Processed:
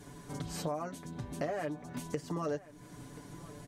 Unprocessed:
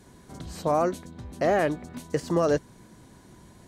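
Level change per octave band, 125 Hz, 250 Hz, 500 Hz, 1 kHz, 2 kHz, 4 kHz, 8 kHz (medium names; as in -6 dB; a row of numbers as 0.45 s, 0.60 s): -6.5 dB, -9.0 dB, -12.5 dB, -12.0 dB, -11.5 dB, -6.0 dB, -4.0 dB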